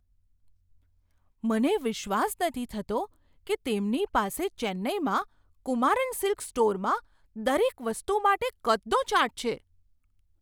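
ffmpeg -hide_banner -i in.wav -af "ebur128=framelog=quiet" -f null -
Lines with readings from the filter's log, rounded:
Integrated loudness:
  I:         -28.2 LUFS
  Threshold: -38.5 LUFS
Loudness range:
  LRA:         3.6 LU
  Threshold: -48.8 LUFS
  LRA low:   -30.8 LUFS
  LRA high:  -27.2 LUFS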